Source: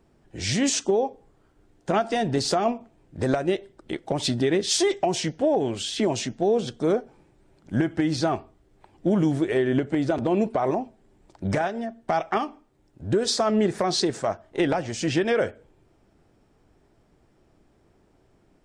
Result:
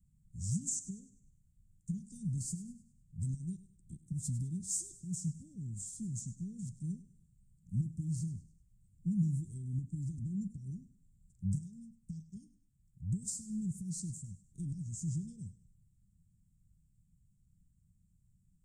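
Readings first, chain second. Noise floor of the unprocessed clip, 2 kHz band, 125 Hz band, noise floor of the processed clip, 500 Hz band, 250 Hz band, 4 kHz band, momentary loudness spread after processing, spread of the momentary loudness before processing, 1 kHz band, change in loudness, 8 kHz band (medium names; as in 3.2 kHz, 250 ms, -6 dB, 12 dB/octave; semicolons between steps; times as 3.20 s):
-62 dBFS, under -40 dB, -5.0 dB, -71 dBFS, under -40 dB, -14.5 dB, under -30 dB, 14 LU, 8 LU, under -40 dB, -14.5 dB, -8.5 dB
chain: Chebyshev band-stop 180–7300 Hz, order 4; on a send: thinning echo 101 ms, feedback 40%, high-pass 190 Hz, level -15 dB; on the sum: trim -4 dB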